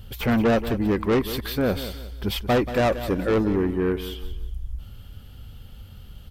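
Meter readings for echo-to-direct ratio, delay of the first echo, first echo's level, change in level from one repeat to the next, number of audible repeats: −12.0 dB, 182 ms, −12.5 dB, −9.5 dB, 3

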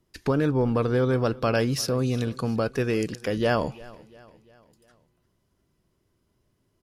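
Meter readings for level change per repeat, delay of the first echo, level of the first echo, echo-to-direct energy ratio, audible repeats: −6.0 dB, 347 ms, −21.5 dB, −20.5 dB, 3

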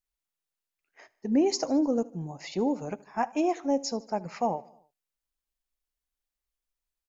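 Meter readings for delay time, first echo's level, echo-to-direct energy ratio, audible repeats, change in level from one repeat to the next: 76 ms, −22.0 dB, −20.0 dB, 3, −4.5 dB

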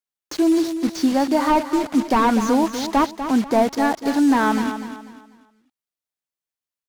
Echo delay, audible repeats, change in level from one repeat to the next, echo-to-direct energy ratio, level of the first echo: 246 ms, 3, −9.5 dB, −9.5 dB, −10.0 dB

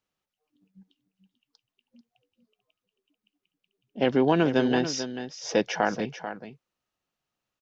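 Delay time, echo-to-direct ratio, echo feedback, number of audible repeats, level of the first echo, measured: 440 ms, −10.5 dB, repeats not evenly spaced, 1, −10.5 dB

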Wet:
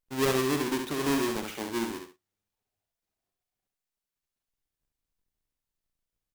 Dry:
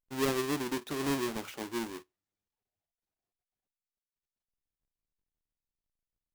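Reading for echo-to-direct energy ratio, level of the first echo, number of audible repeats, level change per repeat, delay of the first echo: −5.0 dB, −5.5 dB, 2, −11.5 dB, 69 ms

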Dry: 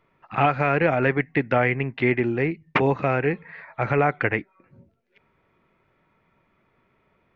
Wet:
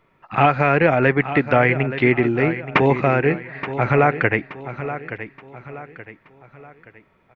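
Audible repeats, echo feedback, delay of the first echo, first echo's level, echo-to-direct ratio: 3, 40%, 875 ms, −12.0 dB, −11.5 dB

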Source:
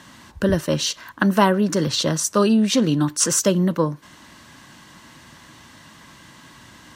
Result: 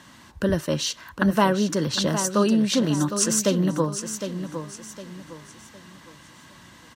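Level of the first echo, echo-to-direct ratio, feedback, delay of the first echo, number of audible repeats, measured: −9.0 dB, −8.5 dB, 34%, 759 ms, 3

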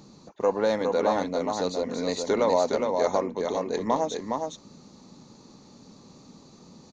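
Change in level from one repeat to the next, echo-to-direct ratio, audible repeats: repeats not evenly spaced, −4.5 dB, 1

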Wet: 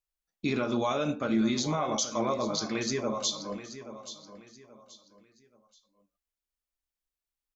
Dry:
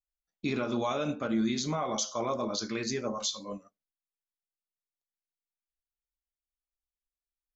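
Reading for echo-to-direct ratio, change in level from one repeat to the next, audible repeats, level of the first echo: −12.5 dB, −10.0 dB, 3, −13.0 dB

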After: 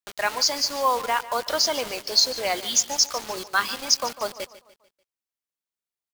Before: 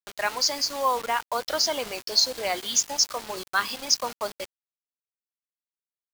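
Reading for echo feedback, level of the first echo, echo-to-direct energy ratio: 44%, −16.5 dB, −15.5 dB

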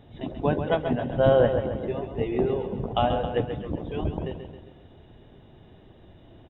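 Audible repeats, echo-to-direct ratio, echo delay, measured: 4, −6.5 dB, 134 ms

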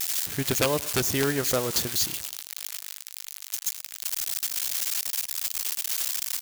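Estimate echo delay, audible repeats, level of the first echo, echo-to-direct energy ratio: 108 ms, 2, −21.0 dB, −20.5 dB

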